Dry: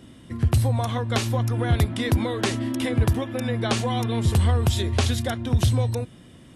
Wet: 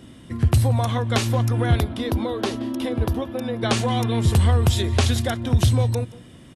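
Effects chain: 1.80–3.63 s: graphic EQ 125/2000/8000 Hz -11/-9/-11 dB; echo from a far wall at 30 m, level -20 dB; trim +2.5 dB

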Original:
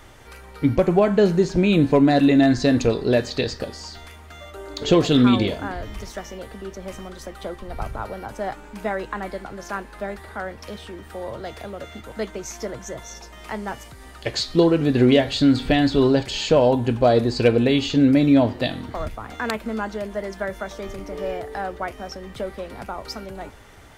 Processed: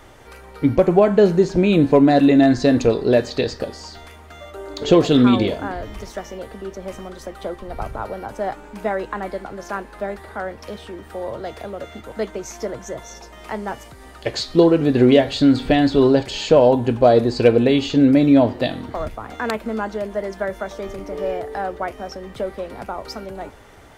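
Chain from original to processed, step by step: peaking EQ 520 Hz +5 dB 2.5 oct; trim -1 dB

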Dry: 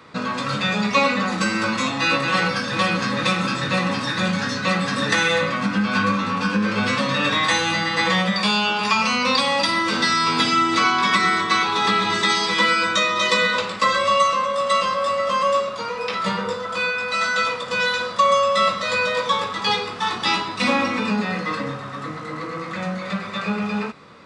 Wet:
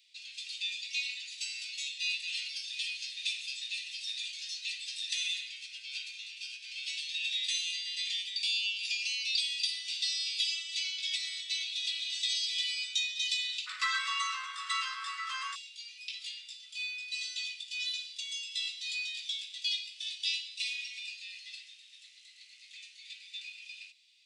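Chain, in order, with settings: steep high-pass 2.6 kHz 48 dB/octave, from 13.66 s 1.3 kHz, from 15.54 s 2.6 kHz; trim -8 dB

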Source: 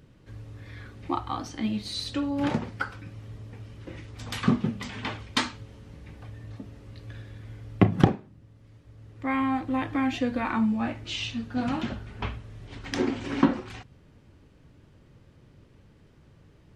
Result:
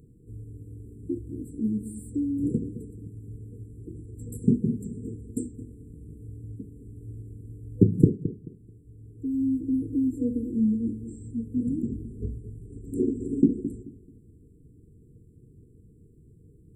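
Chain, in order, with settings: filtered feedback delay 217 ms, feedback 25%, low-pass 1.6 kHz, level -12 dB; FFT band-reject 490–7300 Hz; trim +1.5 dB

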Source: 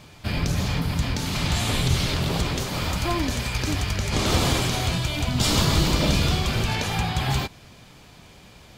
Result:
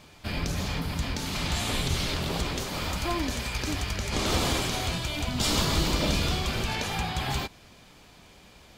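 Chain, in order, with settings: peaking EQ 120 Hz -6.5 dB 0.92 oct; trim -3.5 dB

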